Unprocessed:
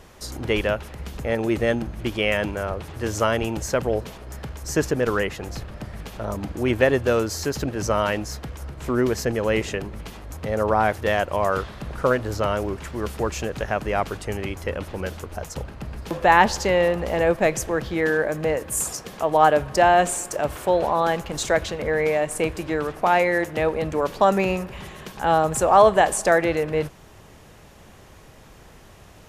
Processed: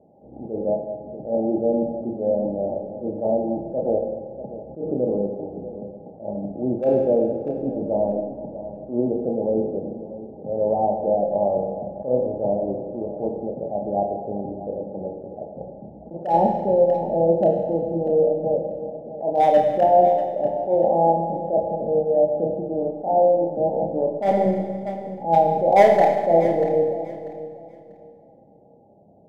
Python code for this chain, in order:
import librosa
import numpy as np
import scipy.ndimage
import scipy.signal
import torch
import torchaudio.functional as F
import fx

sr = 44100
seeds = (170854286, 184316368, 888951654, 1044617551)

p1 = scipy.signal.sosfilt(scipy.signal.butter(2, 190.0, 'highpass', fs=sr, output='sos'), x)
p2 = np.sign(p1) * np.maximum(np.abs(p1) - 10.0 ** (-35.0 / 20.0), 0.0)
p3 = p1 + F.gain(torch.from_numpy(p2), -5.0).numpy()
p4 = scipy.signal.sosfilt(scipy.signal.cheby1(6, 6, 840.0, 'lowpass', fs=sr, output='sos'), p3)
p5 = np.clip(p4, -10.0 ** (-10.0 / 20.0), 10.0 ** (-10.0 / 20.0))
p6 = fx.doubler(p5, sr, ms=30.0, db=-7)
p7 = p6 + fx.echo_feedback(p6, sr, ms=641, feedback_pct=23, wet_db=-14.0, dry=0)
p8 = fx.rev_schroeder(p7, sr, rt60_s=1.6, comb_ms=32, drr_db=4.0)
y = fx.attack_slew(p8, sr, db_per_s=160.0)